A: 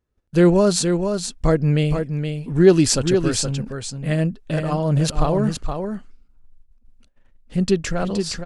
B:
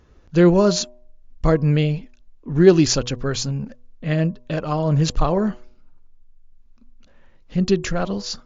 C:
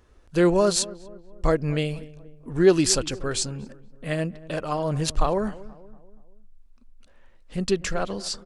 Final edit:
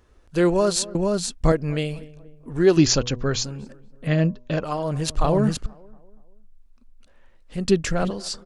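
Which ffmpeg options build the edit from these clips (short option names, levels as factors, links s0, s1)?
-filter_complex "[0:a]asplit=3[s0][s1][s2];[1:a]asplit=2[s3][s4];[2:a]asplit=6[s5][s6][s7][s8][s9][s10];[s5]atrim=end=0.952[s11];[s0]atrim=start=0.948:end=1.522[s12];[s6]atrim=start=1.518:end=2.772[s13];[s3]atrim=start=2.768:end=3.442[s14];[s7]atrim=start=3.438:end=4.072[s15];[s4]atrim=start=4.068:end=4.642[s16];[s8]atrim=start=4.638:end=5.242[s17];[s1]atrim=start=5.238:end=5.662[s18];[s9]atrim=start=5.658:end=7.652[s19];[s2]atrim=start=7.648:end=8.112[s20];[s10]atrim=start=8.108[s21];[s11][s12]acrossfade=d=0.004:c1=hsin:c2=hsin[s22];[s22][s13]acrossfade=d=0.004:c1=hsin:c2=hsin[s23];[s23][s14]acrossfade=d=0.004:c1=hsin:c2=hsin[s24];[s24][s15]acrossfade=d=0.004:c1=hsin:c2=hsin[s25];[s25][s16]acrossfade=d=0.004:c1=hsin:c2=hsin[s26];[s26][s17]acrossfade=d=0.004:c1=hsin:c2=hsin[s27];[s27][s18]acrossfade=d=0.004:c1=hsin:c2=hsin[s28];[s28][s19]acrossfade=d=0.004:c1=hsin:c2=hsin[s29];[s29][s20]acrossfade=d=0.004:c1=hsin:c2=hsin[s30];[s30][s21]acrossfade=d=0.004:c1=hsin:c2=hsin"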